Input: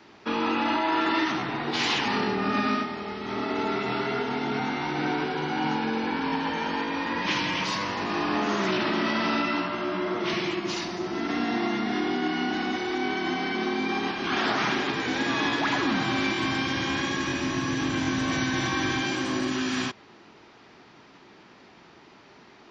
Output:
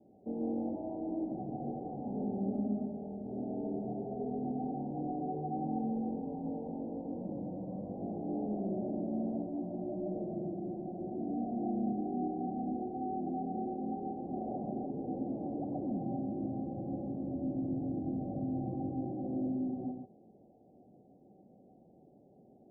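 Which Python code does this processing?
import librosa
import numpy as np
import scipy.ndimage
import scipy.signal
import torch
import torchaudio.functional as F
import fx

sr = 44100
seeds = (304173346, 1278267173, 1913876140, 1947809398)

p1 = (np.mod(10.0 ** (23.5 / 20.0) * x + 1.0, 2.0) - 1.0) / 10.0 ** (23.5 / 20.0)
p2 = x + (p1 * 10.0 ** (-10.5 / 20.0))
p3 = scipy.signal.sosfilt(scipy.signal.cheby1(6, 6, 780.0, 'lowpass', fs=sr, output='sos'), p2)
p4 = p3 + 10.0 ** (-5.5 / 20.0) * np.pad(p3, (int(139 * sr / 1000.0), 0))[:len(p3)]
y = p4 * 10.0 ** (-6.0 / 20.0)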